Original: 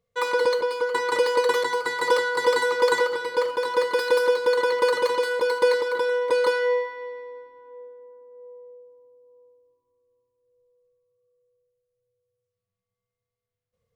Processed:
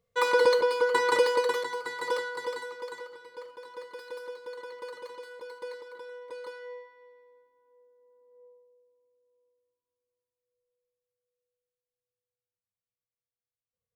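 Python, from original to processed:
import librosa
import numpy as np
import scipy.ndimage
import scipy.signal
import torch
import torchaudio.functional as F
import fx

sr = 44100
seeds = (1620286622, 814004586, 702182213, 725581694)

y = fx.gain(x, sr, db=fx.line((1.11, 0.0), (1.68, -9.0), (2.2, -9.0), (2.91, -20.0), (7.86, -20.0), (8.44, -10.5), (8.67, -18.0)))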